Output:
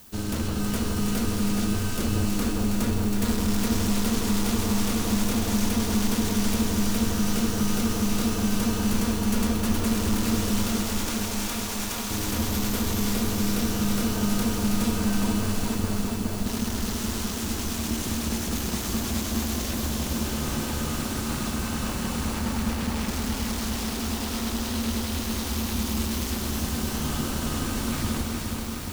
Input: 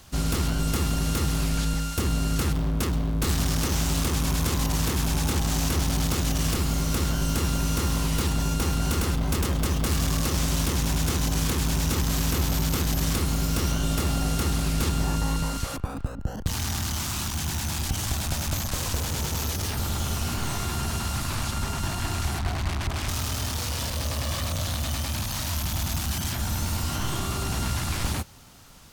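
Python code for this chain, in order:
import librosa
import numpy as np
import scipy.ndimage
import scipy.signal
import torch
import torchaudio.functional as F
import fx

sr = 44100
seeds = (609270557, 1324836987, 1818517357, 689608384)

y = fx.highpass(x, sr, hz=500.0, slope=12, at=(10.67, 12.11))
y = y * np.sin(2.0 * np.pi * 150.0 * np.arange(len(y)) / sr)
y = fx.dmg_noise_colour(y, sr, seeds[0], colour='violet', level_db=-49.0)
y = fx.echo_alternate(y, sr, ms=161, hz=1300.0, feedback_pct=79, wet_db=-3.0)
y = fx.echo_crushed(y, sr, ms=418, feedback_pct=80, bits=7, wet_db=-5.5)
y = F.gain(torch.from_numpy(y), -1.5).numpy()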